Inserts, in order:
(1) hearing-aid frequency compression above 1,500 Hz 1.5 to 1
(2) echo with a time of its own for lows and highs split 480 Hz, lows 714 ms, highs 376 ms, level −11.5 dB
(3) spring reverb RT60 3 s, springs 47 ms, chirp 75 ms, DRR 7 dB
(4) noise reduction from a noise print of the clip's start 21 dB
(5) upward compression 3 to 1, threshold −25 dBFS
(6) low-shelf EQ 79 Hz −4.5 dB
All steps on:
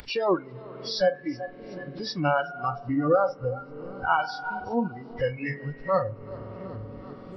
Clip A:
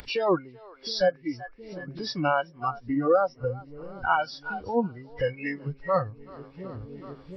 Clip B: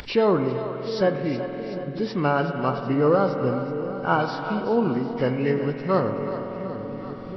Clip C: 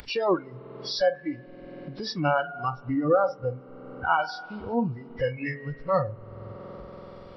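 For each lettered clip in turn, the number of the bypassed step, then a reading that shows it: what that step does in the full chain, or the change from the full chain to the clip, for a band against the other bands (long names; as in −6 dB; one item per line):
3, change in momentary loudness spread +1 LU
4, 4 kHz band −6.0 dB
2, change in momentary loudness spread +3 LU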